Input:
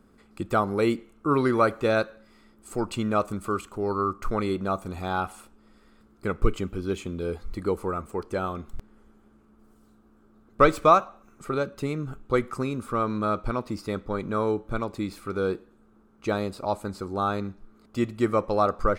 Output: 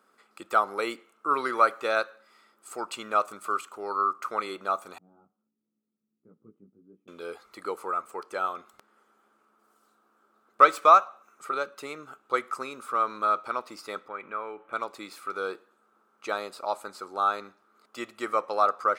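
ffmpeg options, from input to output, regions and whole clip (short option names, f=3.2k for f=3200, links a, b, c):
-filter_complex "[0:a]asettb=1/sr,asplit=3[a][b][c];[a]atrim=end=4.984[d];[b]atrim=start=4.98:end=7.08,asetpts=PTS-STARTPTS,afade=t=in:d=0.004:c=qsin,afade=t=out:st=2.096:d=0.004:c=qsin,flanger=delay=17:depth=2.9:speed=1.5,asuperpass=centerf=160:order=4:qfactor=1.3[e];[c]atrim=start=7.076[f];[d][e]acrossfade=d=0.004:c1=hsin:c2=qsin[g];[g][f]acrossfade=d=0.004:c1=qsin:c2=hsin,asettb=1/sr,asplit=3[h][i][j];[h]atrim=end=14.084[k];[i]atrim=start=14.08:end=14.73,asetpts=PTS-STARTPTS,afade=t=in:d=0.004:c=qsin,afade=t=out:st=0.646:d=0.004:c=qsin,highshelf=f=3.4k:t=q:w=3:g=-11,acompressor=threshold=-33dB:ratio=2:attack=3.2:release=140:knee=1:detection=peak[l];[j]atrim=start=14.726[m];[k][l]acrossfade=d=0.004:c1=hsin:c2=qsin[n];[n][m]acrossfade=d=0.004:c1=qsin:c2=hsin,highpass=640,equalizer=f=1.3k:w=6.6:g=6"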